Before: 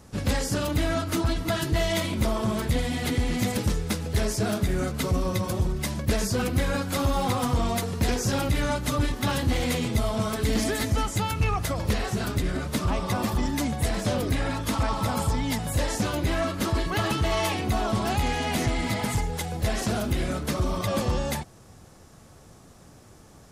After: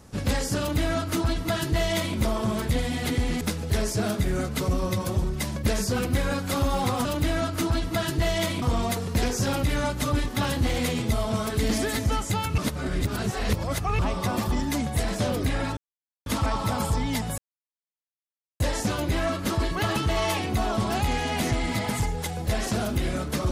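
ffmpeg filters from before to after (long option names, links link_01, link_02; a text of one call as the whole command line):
ffmpeg -i in.wav -filter_complex "[0:a]asplit=8[link_01][link_02][link_03][link_04][link_05][link_06][link_07][link_08];[link_01]atrim=end=3.412[link_09];[link_02]atrim=start=3.838:end=7.482[link_10];[link_03]atrim=start=0.588:end=2.162[link_11];[link_04]atrim=start=7.478:end=11.442[link_12];[link_05]atrim=start=11.438:end=12.852,asetpts=PTS-STARTPTS,areverse[link_13];[link_06]atrim=start=12.848:end=14.63,asetpts=PTS-STARTPTS,afade=type=out:start_time=1.778:duration=0.004:curve=hsin,apad=pad_dur=0.49[link_14];[link_07]atrim=start=14.63:end=15.75,asetpts=PTS-STARTPTS,afade=type=in:duration=0.004:curve=hsin,afade=type=out:start_time=1.116:duration=0.004:curve=hsin,apad=pad_dur=1.22[link_15];[link_08]atrim=start=15.75,asetpts=PTS-STARTPTS,afade=type=in:duration=0.004:curve=hsin[link_16];[link_09][link_10]acrossfade=duration=0.004:curve1=hsin:curve2=hsin[link_17];[link_17][link_11]acrossfade=duration=0.004:curve1=hsin:curve2=hsin[link_18];[link_18][link_12]acrossfade=duration=0.004:curve1=hsin:curve2=hsin[link_19];[link_19][link_13]acrossfade=duration=0.004:curve1=hsin:curve2=hsin[link_20];[link_14][link_15][link_16]concat=n=3:v=0:a=1[link_21];[link_20][link_21]acrossfade=duration=0.004:curve1=hsin:curve2=hsin" out.wav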